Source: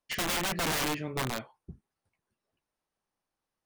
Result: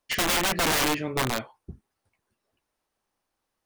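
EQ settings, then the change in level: bell 160 Hz -5.5 dB 0.49 oct; +6.5 dB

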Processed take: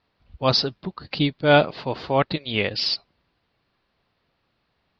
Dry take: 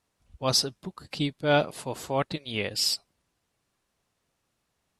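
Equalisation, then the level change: elliptic low-pass 4600 Hz, stop band 50 dB; +7.5 dB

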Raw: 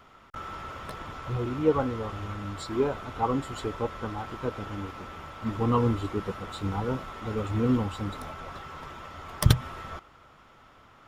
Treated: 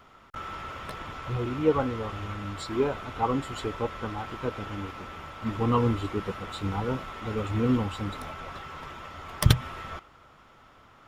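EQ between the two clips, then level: dynamic EQ 2500 Hz, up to +4 dB, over -49 dBFS, Q 1.2; 0.0 dB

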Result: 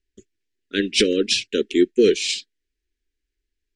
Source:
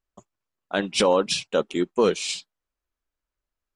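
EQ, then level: Chebyshev band-stop 420–1700 Hz, order 3; air absorption 67 m; fixed phaser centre 360 Hz, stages 4; +9.0 dB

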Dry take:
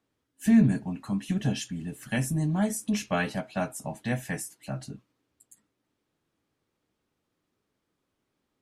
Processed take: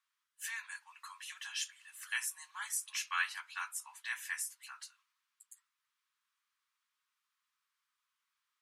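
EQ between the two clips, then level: steep high-pass 990 Hz 72 dB/oct; -1.5 dB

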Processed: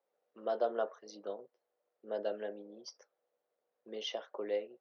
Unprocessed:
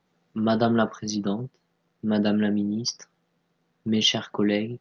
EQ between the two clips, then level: ladder high-pass 480 Hz, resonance 65%; tilt -2 dB/oct; -5.5 dB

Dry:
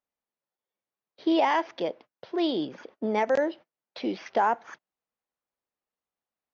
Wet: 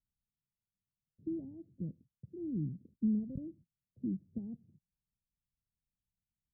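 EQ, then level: inverse Chebyshev low-pass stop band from 990 Hz, stop band 80 dB; tilt -2 dB/oct; +7.0 dB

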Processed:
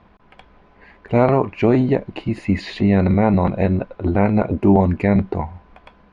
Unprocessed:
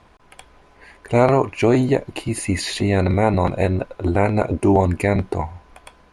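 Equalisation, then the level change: air absorption 230 m; bell 200 Hz +8.5 dB 0.36 oct; 0.0 dB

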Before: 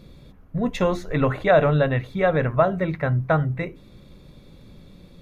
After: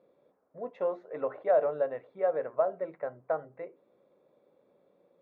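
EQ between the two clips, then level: ladder band-pass 640 Hz, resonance 40%; 0.0 dB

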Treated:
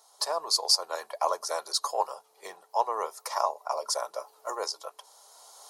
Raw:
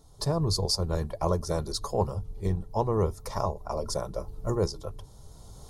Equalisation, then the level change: HPF 680 Hz 24 dB/oct; notch 3600 Hz, Q 22; +5.5 dB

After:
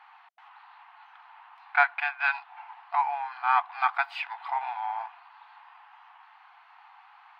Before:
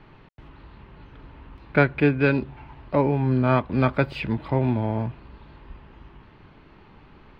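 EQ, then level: brick-wall FIR high-pass 690 Hz; high shelf 2100 Hz -12 dB; +6.0 dB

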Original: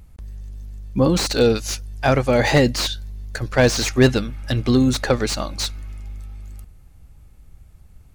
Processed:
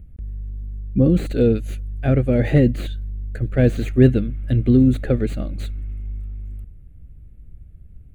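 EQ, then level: tilt shelf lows +8.5 dB; fixed phaser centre 2300 Hz, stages 4; -4.0 dB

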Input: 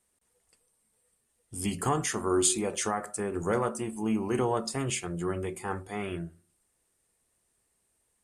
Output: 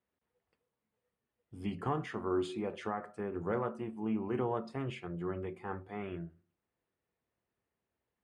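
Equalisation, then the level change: HPF 76 Hz; air absorption 380 m; high shelf 12000 Hz +3 dB; -5.0 dB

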